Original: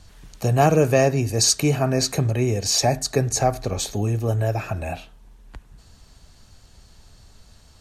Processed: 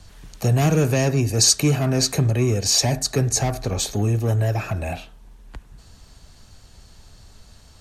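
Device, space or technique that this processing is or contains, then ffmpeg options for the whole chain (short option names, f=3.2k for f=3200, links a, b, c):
one-band saturation: -filter_complex "[0:a]acrossover=split=340|2500[a][b][c];[b]asoftclip=type=tanh:threshold=-27.5dB[d];[a][d][c]amix=inputs=3:normalize=0,volume=2.5dB"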